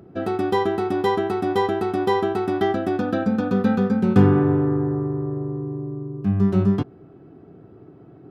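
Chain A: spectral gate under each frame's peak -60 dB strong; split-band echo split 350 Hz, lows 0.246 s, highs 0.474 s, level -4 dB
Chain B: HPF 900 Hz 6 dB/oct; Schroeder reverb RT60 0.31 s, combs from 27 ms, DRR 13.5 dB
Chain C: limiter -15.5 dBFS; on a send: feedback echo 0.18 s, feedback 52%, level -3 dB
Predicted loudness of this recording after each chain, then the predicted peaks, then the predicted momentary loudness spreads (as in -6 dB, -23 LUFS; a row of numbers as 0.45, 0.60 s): -19.5, -29.5, -22.5 LUFS; -2.5, -13.0, -9.5 dBFS; 12, 11, 10 LU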